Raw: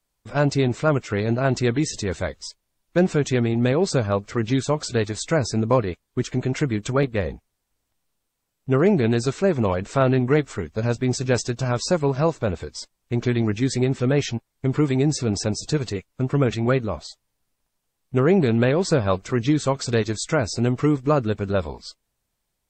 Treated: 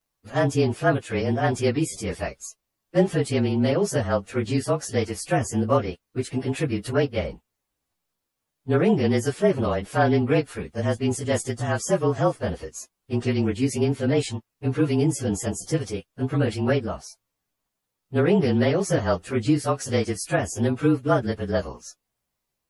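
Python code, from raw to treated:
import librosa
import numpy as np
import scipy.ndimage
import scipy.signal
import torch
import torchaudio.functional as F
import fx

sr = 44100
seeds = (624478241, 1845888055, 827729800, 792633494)

y = fx.partial_stretch(x, sr, pct=109)
y = fx.low_shelf(y, sr, hz=97.0, db=-8.5)
y = F.gain(torch.from_numpy(y), 1.5).numpy()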